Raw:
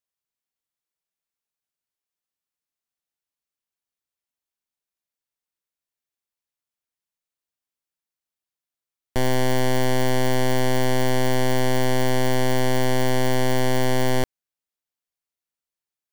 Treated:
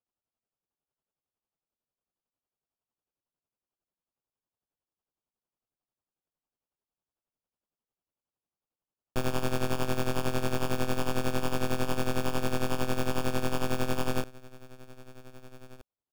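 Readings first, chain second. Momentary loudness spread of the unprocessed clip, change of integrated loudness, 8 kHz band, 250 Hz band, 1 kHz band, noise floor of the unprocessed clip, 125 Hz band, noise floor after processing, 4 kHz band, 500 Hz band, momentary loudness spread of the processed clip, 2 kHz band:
2 LU, −8.5 dB, −9.0 dB, −8.0 dB, −8.5 dB, below −85 dBFS, −9.0 dB, below −85 dBFS, −9.0 dB, −9.5 dB, 13 LU, −9.0 dB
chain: slap from a distant wall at 270 metres, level −19 dB
decimation without filtering 22×
amplitude tremolo 11 Hz, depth 71%
level −5.5 dB

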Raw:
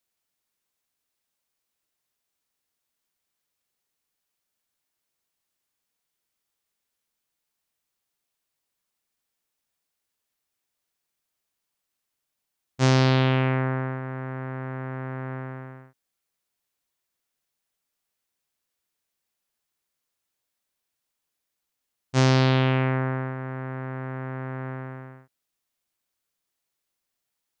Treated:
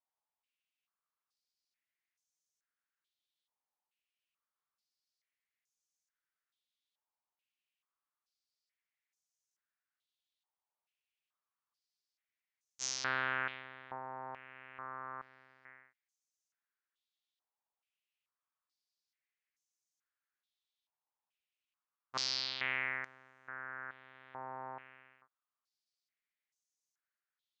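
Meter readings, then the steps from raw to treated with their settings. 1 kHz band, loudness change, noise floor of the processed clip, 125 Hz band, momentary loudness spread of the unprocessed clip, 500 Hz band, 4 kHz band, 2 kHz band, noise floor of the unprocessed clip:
−11.5 dB, −13.5 dB, below −85 dBFS, −36.0 dB, 16 LU, −22.5 dB, −7.0 dB, −6.5 dB, −82 dBFS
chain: band-pass on a step sequencer 2.3 Hz 880–6,300 Hz
level +1 dB

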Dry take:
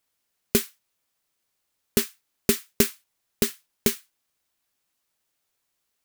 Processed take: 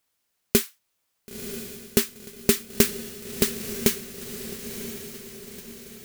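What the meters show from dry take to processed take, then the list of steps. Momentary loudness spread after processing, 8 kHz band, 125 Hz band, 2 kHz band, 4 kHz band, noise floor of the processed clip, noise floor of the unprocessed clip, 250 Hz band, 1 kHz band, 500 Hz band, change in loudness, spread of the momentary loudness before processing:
17 LU, +2.0 dB, +2.0 dB, +2.0 dB, +2.0 dB, −76 dBFS, −78 dBFS, +2.0 dB, +2.0 dB, +2.0 dB, −0.5 dB, 7 LU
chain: feedback delay with all-pass diffusion 991 ms, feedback 50%, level −9.5 dB
level +1.5 dB

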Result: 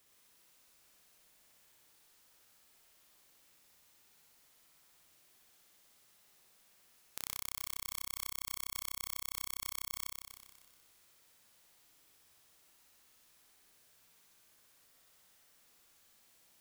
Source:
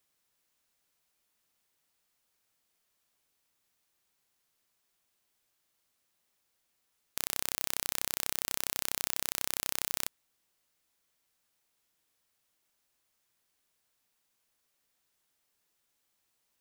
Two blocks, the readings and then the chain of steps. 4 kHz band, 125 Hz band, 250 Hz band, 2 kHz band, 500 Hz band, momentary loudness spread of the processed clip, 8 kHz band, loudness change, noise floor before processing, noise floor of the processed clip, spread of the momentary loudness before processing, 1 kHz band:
−6.5 dB, −6.0 dB, −11.0 dB, −8.0 dB, −14.0 dB, 9 LU, −7.0 dB, −7.5 dB, −78 dBFS, −67 dBFS, 3 LU, −5.5 dB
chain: downward compressor 8 to 1, threshold −44 dBFS, peak gain reduction 18 dB
on a send: flutter between parallel walls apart 10.5 metres, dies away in 1.4 s
on the sum: level +7.5 dB

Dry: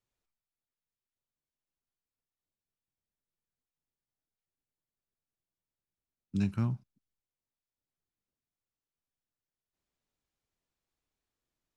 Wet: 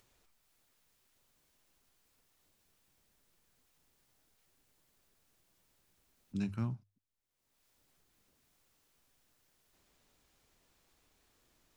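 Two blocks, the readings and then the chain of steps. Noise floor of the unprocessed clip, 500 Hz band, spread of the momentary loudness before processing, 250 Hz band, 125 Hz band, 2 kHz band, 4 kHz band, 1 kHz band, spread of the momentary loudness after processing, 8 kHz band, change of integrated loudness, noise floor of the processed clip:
below −85 dBFS, −4.0 dB, 9 LU, −5.0 dB, −6.0 dB, −4.0 dB, −2.5 dB, −4.0 dB, 9 LU, can't be measured, −5.5 dB, −80 dBFS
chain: parametric band 150 Hz −2.5 dB
mains-hum notches 50/100 Hz
upward compression, threshold −50 dBFS
level −4 dB

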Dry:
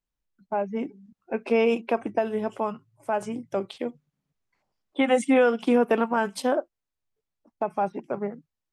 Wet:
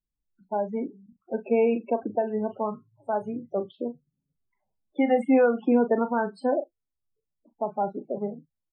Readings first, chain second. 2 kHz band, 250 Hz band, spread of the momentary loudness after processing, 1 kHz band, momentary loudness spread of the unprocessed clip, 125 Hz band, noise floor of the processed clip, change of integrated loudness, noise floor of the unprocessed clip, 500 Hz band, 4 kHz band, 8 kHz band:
−5.5 dB, +0.5 dB, 14 LU, −1.5 dB, 13 LU, can't be measured, −84 dBFS, −0.5 dB, below −85 dBFS, −0.5 dB, below −10 dB, below −20 dB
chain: spectral peaks only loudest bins 16
low-pass filter 1,400 Hz 6 dB per octave
double-tracking delay 38 ms −11 dB

